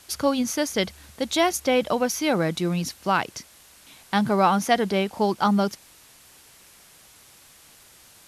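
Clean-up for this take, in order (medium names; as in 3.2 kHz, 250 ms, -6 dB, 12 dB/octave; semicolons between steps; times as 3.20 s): noise reduction 17 dB, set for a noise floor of -52 dBFS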